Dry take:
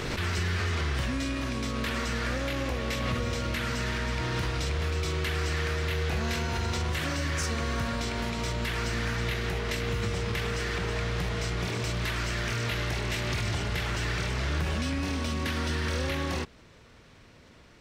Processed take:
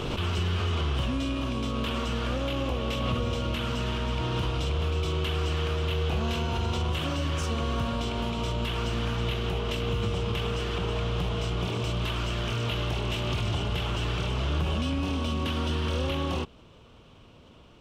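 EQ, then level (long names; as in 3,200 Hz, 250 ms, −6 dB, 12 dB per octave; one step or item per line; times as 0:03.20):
drawn EQ curve 1,200 Hz 0 dB, 1,900 Hz −14 dB, 3,000 Hz +4 dB, 4,300 Hz −8 dB
+2.0 dB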